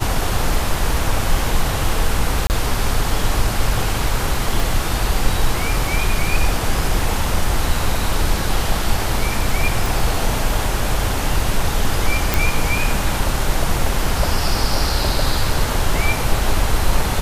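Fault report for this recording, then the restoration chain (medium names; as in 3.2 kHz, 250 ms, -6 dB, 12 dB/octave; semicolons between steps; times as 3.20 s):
2.47–2.50 s: dropout 29 ms
4.60 s: pop
9.86 s: pop
12.34 s: pop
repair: de-click; interpolate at 2.47 s, 29 ms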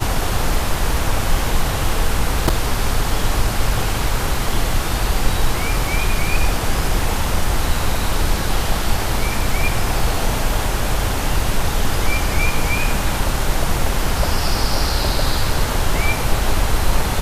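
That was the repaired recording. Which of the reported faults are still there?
4.60 s: pop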